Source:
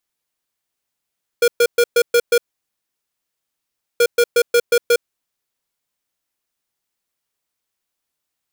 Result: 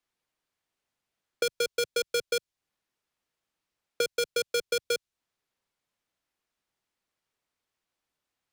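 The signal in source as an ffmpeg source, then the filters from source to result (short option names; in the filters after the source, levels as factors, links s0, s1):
-f lavfi -i "aevalsrc='0.237*(2*lt(mod(476*t,1),0.5)-1)*clip(min(mod(mod(t,2.58),0.18),0.06-mod(mod(t,2.58),0.18))/0.005,0,1)*lt(mod(t,2.58),1.08)':d=5.16:s=44100"
-filter_complex "[0:a]aemphasis=mode=reproduction:type=50kf,acrossover=split=140|3000[s0][s1][s2];[s1]acompressor=threshold=0.0398:ratio=6[s3];[s0][s3][s2]amix=inputs=3:normalize=0,acrossover=split=130|1500|2200[s4][s5][s6][s7];[s4]acrusher=bits=3:mode=log:mix=0:aa=0.000001[s8];[s8][s5][s6][s7]amix=inputs=4:normalize=0"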